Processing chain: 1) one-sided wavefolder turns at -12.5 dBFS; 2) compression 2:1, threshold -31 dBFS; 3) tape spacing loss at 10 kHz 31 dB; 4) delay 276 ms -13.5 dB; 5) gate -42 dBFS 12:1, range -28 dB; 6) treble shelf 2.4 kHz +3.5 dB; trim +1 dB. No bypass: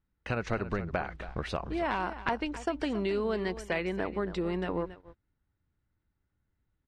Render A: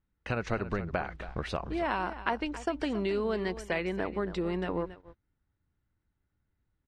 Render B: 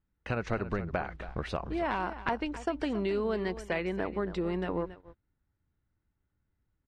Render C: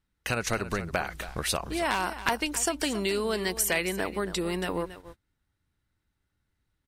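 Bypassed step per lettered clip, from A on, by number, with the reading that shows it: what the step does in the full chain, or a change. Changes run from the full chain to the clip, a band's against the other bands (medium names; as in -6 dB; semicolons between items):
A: 1, distortion -18 dB; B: 6, 4 kHz band -2.0 dB; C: 3, 8 kHz band +21.0 dB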